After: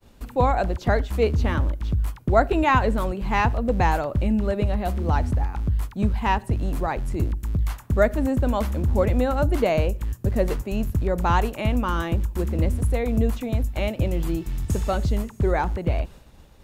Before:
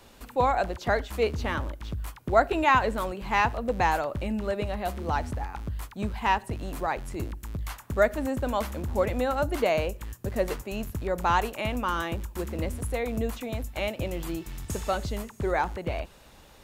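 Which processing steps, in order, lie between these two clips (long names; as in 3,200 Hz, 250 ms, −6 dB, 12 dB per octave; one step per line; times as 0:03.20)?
downward expander −47 dBFS
low-shelf EQ 330 Hz +11.5 dB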